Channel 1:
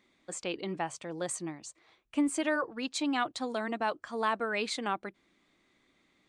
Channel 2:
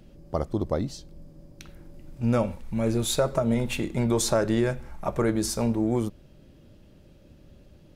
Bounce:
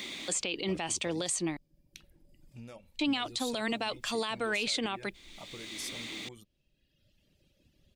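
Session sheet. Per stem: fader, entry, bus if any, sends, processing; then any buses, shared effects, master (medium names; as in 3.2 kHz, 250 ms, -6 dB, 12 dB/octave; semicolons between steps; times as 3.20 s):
+2.5 dB, 0.00 s, muted 1.57–2.99 s, no send, three bands compressed up and down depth 70%
-13.5 dB, 0.35 s, no send, reverb removal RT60 1.3 s; peaking EQ 1.8 kHz +5.5 dB 0.41 oct; compression 3:1, threshold -34 dBFS, peak gain reduction 11.5 dB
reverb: none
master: resonant high shelf 2.1 kHz +9 dB, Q 1.5; peak limiter -21.5 dBFS, peak gain reduction 11 dB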